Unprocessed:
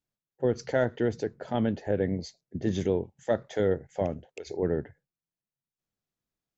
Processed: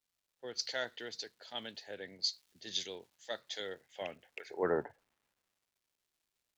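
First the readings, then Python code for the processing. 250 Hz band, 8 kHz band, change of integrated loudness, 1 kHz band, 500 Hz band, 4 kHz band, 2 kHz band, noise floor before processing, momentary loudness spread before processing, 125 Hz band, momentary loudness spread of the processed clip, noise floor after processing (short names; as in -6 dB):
-17.5 dB, n/a, -9.5 dB, -7.5 dB, -12.0 dB, +9.0 dB, -4.0 dB, under -85 dBFS, 8 LU, -23.5 dB, 13 LU, under -85 dBFS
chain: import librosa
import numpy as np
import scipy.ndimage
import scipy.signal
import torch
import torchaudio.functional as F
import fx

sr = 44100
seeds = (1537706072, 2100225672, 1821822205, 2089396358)

y = fx.filter_sweep_bandpass(x, sr, from_hz=4200.0, to_hz=410.0, start_s=3.79, end_s=5.45, q=3.3)
y = fx.dmg_crackle(y, sr, seeds[0], per_s=560.0, level_db=-70.0)
y = fx.band_widen(y, sr, depth_pct=40)
y = y * librosa.db_to_amplitude(11.0)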